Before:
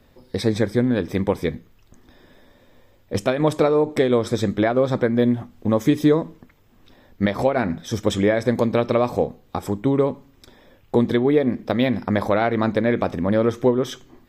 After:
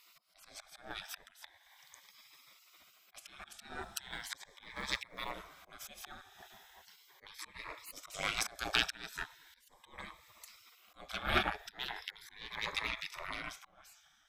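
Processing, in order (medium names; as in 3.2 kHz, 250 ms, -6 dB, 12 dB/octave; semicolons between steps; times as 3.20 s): fade out at the end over 1.98 s; bass shelf 370 Hz +2.5 dB; reverberation, pre-delay 3 ms, DRR 13.5 dB; in parallel at -3 dB: compression 16:1, threshold -26 dBFS, peak gain reduction 17 dB; 3.83–5.31 s: on the sum: short-mantissa float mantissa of 8-bit; 7.90–9.07 s: tone controls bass +9 dB, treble +6 dB; slow attack 434 ms; Chebyshev shaper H 4 -18 dB, 7 -24 dB, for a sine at -3 dBFS; spectral gate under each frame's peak -25 dB weak; Shepard-style phaser rising 0.38 Hz; trim +5.5 dB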